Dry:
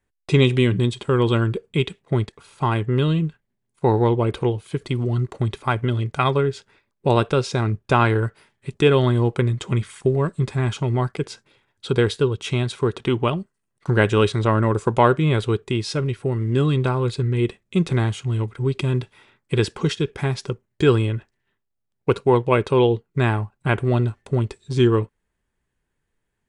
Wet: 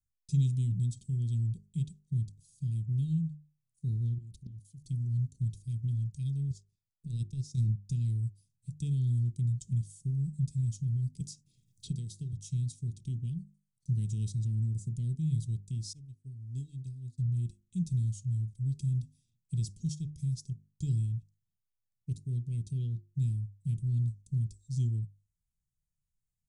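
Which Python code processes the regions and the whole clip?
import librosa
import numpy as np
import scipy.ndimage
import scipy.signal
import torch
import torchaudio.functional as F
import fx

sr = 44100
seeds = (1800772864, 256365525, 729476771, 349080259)

y = fx.chain(x, sr, fx.level_steps(step_db=17),
    fx.doppler_dist(depth_ms=0.96), at=(4.18, 4.84))
y = fx.chain(y, sr, fx.transient(attack_db=9, sustain_db=-11),
    fx.over_compress(threshold_db=-18.0, ratio=-1.0), at=(6.5, 7.72))
y = fx.chain(y, sr, fx.low_shelf(hz=120.0, db=-9.0),
    fx.band_squash(depth_pct=100), at=(11.2, 12.33))
y = fx.chain(y, sr, fx.peak_eq(hz=160.0, db=-12.5, octaves=0.4),
    fx.upward_expand(threshold_db=-36.0, expansion=2.5), at=(15.93, 17.18))
y = scipy.signal.sosfilt(scipy.signal.cheby1(3, 1.0, [160.0, 6000.0], 'bandstop', fs=sr, output='sos'), y)
y = fx.hum_notches(y, sr, base_hz=50, count=8)
y = y * librosa.db_to_amplitude(-7.5)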